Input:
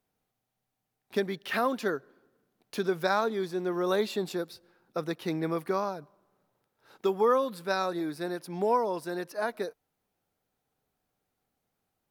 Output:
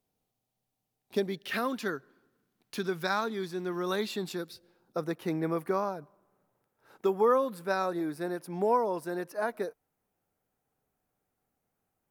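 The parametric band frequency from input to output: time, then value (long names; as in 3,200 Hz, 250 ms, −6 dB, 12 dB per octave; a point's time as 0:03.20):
parametric band −7.5 dB 1.2 octaves
0:01.24 1,600 Hz
0:01.79 560 Hz
0:04.37 560 Hz
0:05.13 4,000 Hz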